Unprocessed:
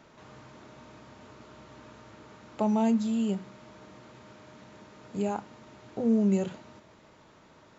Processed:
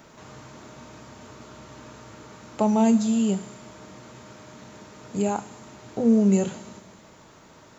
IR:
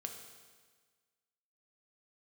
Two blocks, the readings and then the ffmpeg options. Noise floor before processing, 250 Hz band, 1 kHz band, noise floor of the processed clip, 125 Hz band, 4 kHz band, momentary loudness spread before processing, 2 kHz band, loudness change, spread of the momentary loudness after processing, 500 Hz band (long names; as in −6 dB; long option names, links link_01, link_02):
−57 dBFS, +5.5 dB, +5.5 dB, −51 dBFS, +5.5 dB, +6.5 dB, 13 LU, +5.5 dB, +5.5 dB, 17 LU, +5.5 dB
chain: -filter_complex "[0:a]asplit=2[link_01][link_02];[link_02]bass=frequency=250:gain=10,treble=frequency=4000:gain=13[link_03];[1:a]atrim=start_sample=2205,lowshelf=frequency=380:gain=-8.5,highshelf=frequency=5900:gain=9[link_04];[link_03][link_04]afir=irnorm=-1:irlink=0,volume=-6.5dB[link_05];[link_01][link_05]amix=inputs=2:normalize=0,volume=3.5dB"